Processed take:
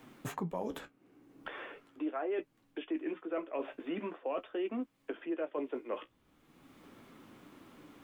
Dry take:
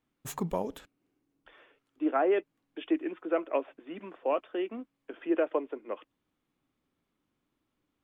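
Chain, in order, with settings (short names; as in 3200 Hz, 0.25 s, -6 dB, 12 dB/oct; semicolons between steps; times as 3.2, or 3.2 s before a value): reverse; compressor 8:1, threshold -38 dBFS, peak gain reduction 16 dB; reverse; flange 0.42 Hz, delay 7.5 ms, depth 9.7 ms, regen -42%; three-band squash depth 70%; gain +8.5 dB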